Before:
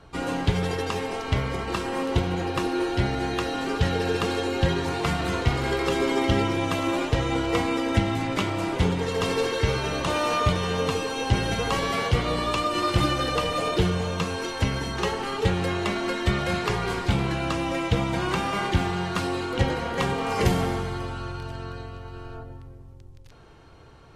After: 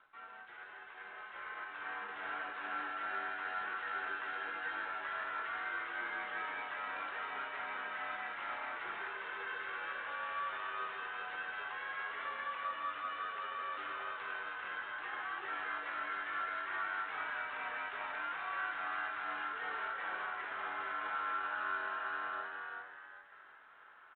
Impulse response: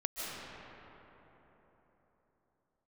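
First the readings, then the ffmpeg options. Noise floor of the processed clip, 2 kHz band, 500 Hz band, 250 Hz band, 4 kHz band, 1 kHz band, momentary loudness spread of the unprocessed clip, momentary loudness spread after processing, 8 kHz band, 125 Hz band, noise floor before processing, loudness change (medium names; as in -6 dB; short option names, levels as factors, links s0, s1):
-54 dBFS, -6.0 dB, -24.5 dB, -33.0 dB, -20.0 dB, -10.5 dB, 5 LU, 8 LU, under -40 dB, under -40 dB, -45 dBFS, -14.0 dB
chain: -filter_complex "[0:a]highpass=500,aderivative,areverse,acompressor=threshold=0.00224:ratio=12,areverse,alimiter=level_in=18.8:limit=0.0631:level=0:latency=1:release=16,volume=0.0531,dynaudnorm=f=110:g=31:m=3.35,afreqshift=-59,lowpass=f=1500:t=q:w=3.3,acrusher=bits=4:mode=log:mix=0:aa=0.000001,asoftclip=type=tanh:threshold=0.0158,asplit=2[s0][s1];[s1]adelay=20,volume=0.335[s2];[s0][s2]amix=inputs=2:normalize=0,asplit=6[s3][s4][s5][s6][s7][s8];[s4]adelay=392,afreqshift=96,volume=0.631[s9];[s5]adelay=784,afreqshift=192,volume=0.234[s10];[s6]adelay=1176,afreqshift=288,volume=0.0861[s11];[s7]adelay=1568,afreqshift=384,volume=0.032[s12];[s8]adelay=1960,afreqshift=480,volume=0.0119[s13];[s3][s9][s10][s11][s12][s13]amix=inputs=6:normalize=0,volume=1.78" -ar 8000 -c:a adpcm_g726 -b:a 32k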